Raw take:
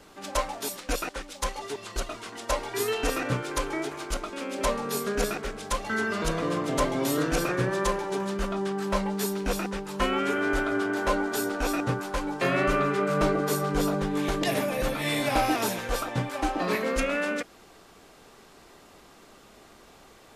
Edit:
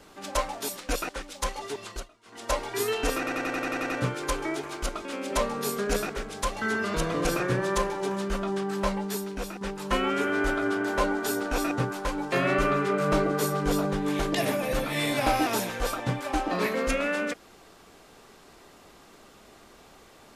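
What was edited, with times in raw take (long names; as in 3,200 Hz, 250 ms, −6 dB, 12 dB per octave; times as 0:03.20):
0:01.86–0:02.47: duck −22.5 dB, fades 0.24 s
0:03.18: stutter 0.09 s, 9 plays
0:06.53–0:07.34: remove
0:08.87–0:09.70: fade out, to −9 dB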